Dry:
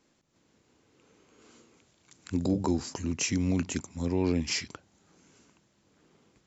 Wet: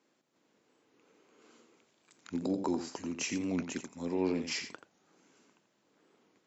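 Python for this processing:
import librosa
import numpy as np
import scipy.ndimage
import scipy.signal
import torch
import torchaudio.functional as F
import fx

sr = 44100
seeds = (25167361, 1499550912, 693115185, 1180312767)

y = scipy.signal.sosfilt(scipy.signal.butter(2, 250.0, 'highpass', fs=sr, output='sos'), x)
y = fx.high_shelf(y, sr, hz=4900.0, db=-7.5)
y = y + 10.0 ** (-9.5 / 20.0) * np.pad(y, (int(86 * sr / 1000.0), 0))[:len(y)]
y = fx.record_warp(y, sr, rpm=45.0, depth_cents=100.0)
y = y * librosa.db_to_amplitude(-2.5)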